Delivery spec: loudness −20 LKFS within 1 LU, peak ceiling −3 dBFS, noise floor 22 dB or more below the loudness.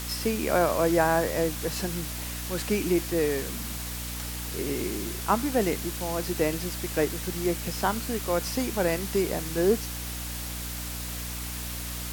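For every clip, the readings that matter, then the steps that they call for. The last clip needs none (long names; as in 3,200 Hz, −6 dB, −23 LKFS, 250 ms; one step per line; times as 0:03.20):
mains hum 60 Hz; hum harmonics up to 300 Hz; level of the hum −35 dBFS; background noise floor −35 dBFS; target noise floor −50 dBFS; integrated loudness −28.0 LKFS; sample peak −9.0 dBFS; target loudness −20.0 LKFS
→ hum removal 60 Hz, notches 5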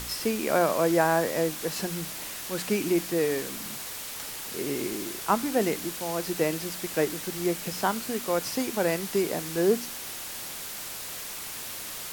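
mains hum none found; background noise floor −38 dBFS; target noise floor −51 dBFS
→ broadband denoise 13 dB, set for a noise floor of −38 dBFS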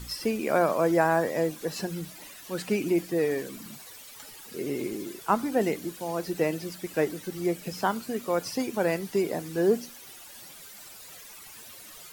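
background noise floor −47 dBFS; target noise floor −51 dBFS
→ broadband denoise 6 dB, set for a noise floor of −47 dBFS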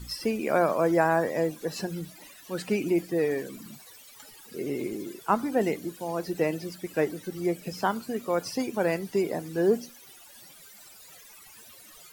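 background noise floor −51 dBFS; integrated loudness −28.5 LKFS; sample peak −10.0 dBFS; target loudness −20.0 LKFS
→ level +8.5 dB
brickwall limiter −3 dBFS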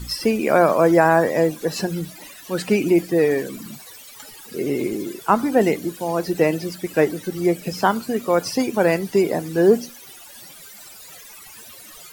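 integrated loudness −20.0 LKFS; sample peak −3.0 dBFS; background noise floor −42 dBFS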